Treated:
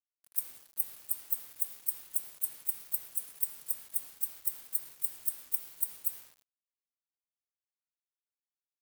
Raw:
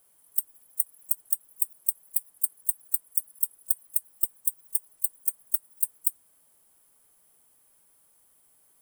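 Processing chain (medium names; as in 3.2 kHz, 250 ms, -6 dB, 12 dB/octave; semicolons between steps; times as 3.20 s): coarse spectral quantiser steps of 15 dB; treble shelf 3.2 kHz +7 dB; peak limiter -9 dBFS, peak gain reduction 9.5 dB; ring modulator 150 Hz; band-stop 2.5 kHz, Q 5.7; gated-style reverb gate 410 ms falling, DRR 11 dB; small samples zeroed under -43 dBFS; trim -3 dB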